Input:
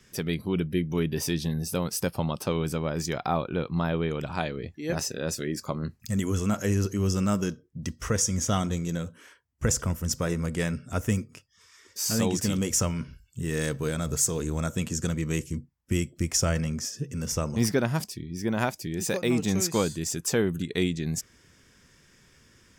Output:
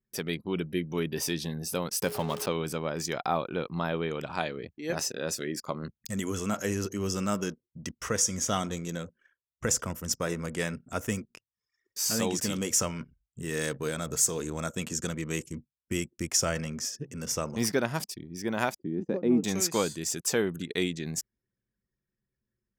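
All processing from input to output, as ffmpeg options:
ffmpeg -i in.wav -filter_complex "[0:a]asettb=1/sr,asplit=3[link_01][link_02][link_03];[link_01]atrim=end=2.024[link_04];[link_02]atrim=start=2.02:end=2.46,asetpts=PTS-STARTPTS,afade=type=in:duration=0.004:curve=qsin,afade=type=out:start_time=0.436:duration=0.004:curve=qsin,aeval=exprs='val(0)+0.5*0.0178*sgn(val(0))':channel_layout=same,aeval=exprs='val(0)+0.0158*sin(2*PI*420*n/s)':channel_layout=same[link_05];[link_03]atrim=start=2.456[link_06];[link_04][link_05]acrossfade=duration=0.004:curve1=hsin:curve2=qsin[link_07];[link_07][link_06]acrossfade=duration=0.004:curve1=qsin:curve2=hsin,asettb=1/sr,asplit=3[link_08][link_09][link_10];[link_08]atrim=end=18.794[link_11];[link_09]atrim=start=18.79:end=19.44,asetpts=PTS-STARTPTS,afade=type=in:duration=0.004:curve=qsin,afade=type=out:start_time=0.646:duration=0.004:curve=qsin,bandpass=frequency=250:width_type=q:width=1.5,acontrast=81[link_12];[link_10]atrim=start=19.436[link_13];[link_11][link_12]acrossfade=duration=0.004:curve1=hsin:curve2=qsin[link_14];[link_14][link_13]acrossfade=duration=0.004:curve1=qsin:curve2=hsin,highpass=frequency=310:poles=1,anlmdn=0.0398" out.wav

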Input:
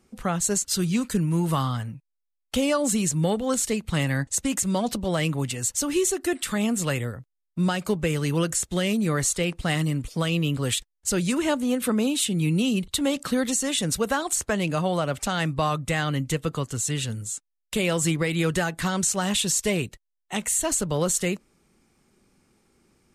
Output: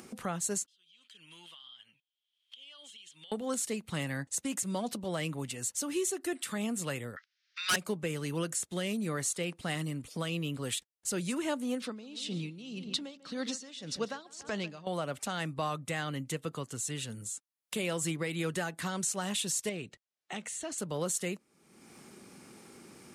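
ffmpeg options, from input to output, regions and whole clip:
ffmpeg -i in.wav -filter_complex "[0:a]asettb=1/sr,asplit=3[link_01][link_02][link_03];[link_01]atrim=end=0.664[link_04];[link_02]atrim=start=0.66:end=3.32,asetpts=PTS-STARTPTS,afade=type=in:duration=0.004:curve=qsin,afade=type=out:start_time=2.656:duration=0.004:curve=qsin,bandpass=frequency=3200:width_type=q:width=16,acompressor=threshold=-60dB:ratio=5:attack=3.2:release=140:knee=1:detection=peak[link_05];[link_03]atrim=start=3.316[link_06];[link_04][link_05]acrossfade=duration=0.004:curve1=hsin:curve2=qsin[link_07];[link_07][link_06]acrossfade=duration=0.004:curve1=qsin:curve2=hsin,asettb=1/sr,asplit=3[link_08][link_09][link_10];[link_08]atrim=end=7.164[link_11];[link_09]atrim=start=7.16:end=7.76,asetpts=PTS-STARTPTS,afade=type=in:duration=0.004:curve=qsin,afade=type=out:start_time=0.596:duration=0.004:curve=qsin,asuperpass=centerf=2900:order=12:qfactor=0.68,acontrast=73,aeval=exprs='0.2*sin(PI/2*3.16*val(0)/0.2)':channel_layout=same[link_12];[link_10]atrim=start=7.756[link_13];[link_11][link_12]acrossfade=duration=0.004:curve1=hsin:curve2=qsin[link_14];[link_14][link_13]acrossfade=duration=0.004:curve1=qsin:curve2=hsin,asettb=1/sr,asplit=3[link_15][link_16][link_17];[link_15]atrim=end=11.804[link_18];[link_16]atrim=start=11.8:end=14.87,asetpts=PTS-STARTPTS,afade=type=in:duration=0.004:curve=qsin,afade=type=out:start_time=3.066:duration=0.004:curve=qsin,lowpass=frequency=5000:width_type=q:width=2.6,asplit=2[link_19][link_20];[link_20]adelay=143,lowpass=frequency=2400:poles=1,volume=-14dB,asplit=2[link_21][link_22];[link_22]adelay=143,lowpass=frequency=2400:poles=1,volume=0.49,asplit=2[link_23][link_24];[link_24]adelay=143,lowpass=frequency=2400:poles=1,volume=0.49,asplit=2[link_25][link_26];[link_26]adelay=143,lowpass=frequency=2400:poles=1,volume=0.49,asplit=2[link_27][link_28];[link_28]adelay=143,lowpass=frequency=2400:poles=1,volume=0.49[link_29];[link_19][link_21][link_23][link_25][link_27][link_29]amix=inputs=6:normalize=0,atrim=end_sample=135387,aeval=exprs='val(0)*pow(10,-20*(0.5-0.5*cos(2*PI*1.8*n/s))/20)':channel_layout=same[link_30];[link_17]atrim=start=14.866[link_31];[link_18][link_30]acrossfade=duration=0.004:curve1=hsin:curve2=qsin[link_32];[link_32][link_31]acrossfade=duration=0.004:curve1=qsin:curve2=hsin,asettb=1/sr,asplit=3[link_33][link_34][link_35];[link_33]atrim=end=19.694[link_36];[link_34]atrim=start=19.69:end=20.78,asetpts=PTS-STARTPTS,afade=type=in:duration=0.004:curve=qsin,afade=type=out:start_time=1.086:duration=0.004:curve=qsin,lowpass=5900,acompressor=threshold=-31dB:ratio=1.5:attack=3.2:release=140:knee=1:detection=peak,bandreject=frequency=1000:width=9.1[link_37];[link_35]atrim=start=20.776[link_38];[link_36][link_37]acrossfade=duration=0.004:curve1=hsin:curve2=qsin[link_39];[link_39][link_38]acrossfade=duration=0.004:curve1=qsin:curve2=hsin,highpass=150,equalizer=frequency=9800:width=7.8:gain=5.5,acompressor=mode=upward:threshold=-26dB:ratio=2.5,volume=-9dB" out.wav

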